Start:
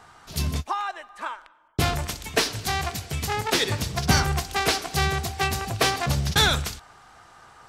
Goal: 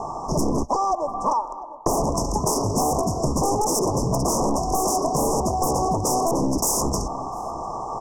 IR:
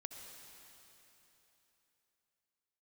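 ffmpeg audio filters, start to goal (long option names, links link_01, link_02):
-filter_complex "[0:a]alimiter=limit=-14.5dB:level=0:latency=1:release=49,lowpass=3800,aeval=exprs='0.2*sin(PI/2*4.47*val(0)/0.2)':channel_layout=same,asetrate=42336,aresample=44100,asuperstop=centerf=2500:order=20:qfactor=0.58,equalizer=frequency=80:width=1.1:gain=-13,asplit=2[link_01][link_02];[link_02]adelay=699.7,volume=-24dB,highshelf=frequency=4000:gain=-15.7[link_03];[link_01][link_03]amix=inputs=2:normalize=0,acompressor=threshold=-26dB:ratio=6,volume=7dB"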